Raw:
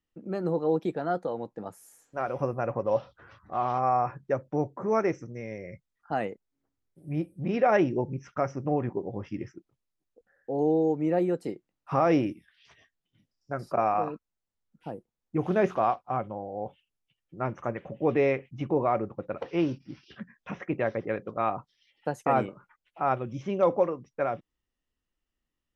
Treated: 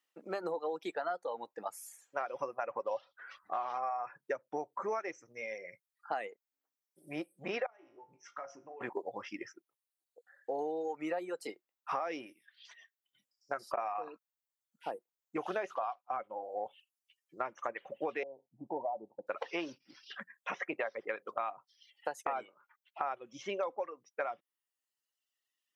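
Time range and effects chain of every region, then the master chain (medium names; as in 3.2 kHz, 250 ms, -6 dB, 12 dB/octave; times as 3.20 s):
7.66–8.81 s: de-hum 346.8 Hz, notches 4 + compression 8:1, threshold -34 dBFS + feedback comb 55 Hz, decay 0.48 s, mix 80%
18.23–19.27 s: rippled Chebyshev low-pass 930 Hz, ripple 3 dB + dynamic bell 490 Hz, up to -6 dB, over -40 dBFS, Q 0.71
whole clip: reverb removal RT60 1.4 s; high-pass 690 Hz 12 dB/octave; compression 12:1, threshold -39 dBFS; trim +6.5 dB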